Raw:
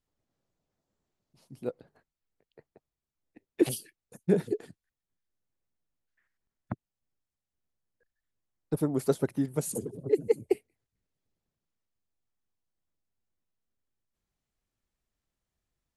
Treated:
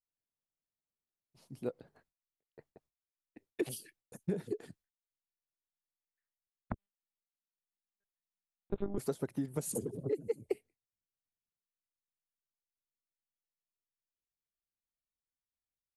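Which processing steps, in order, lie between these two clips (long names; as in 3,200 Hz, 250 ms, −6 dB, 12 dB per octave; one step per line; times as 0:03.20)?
noise gate with hold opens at −56 dBFS
downward compressor 6 to 1, threshold −31 dBFS, peak gain reduction 13.5 dB
0:06.72–0:08.98: one-pitch LPC vocoder at 8 kHz 200 Hz
speech leveller
level +1.5 dB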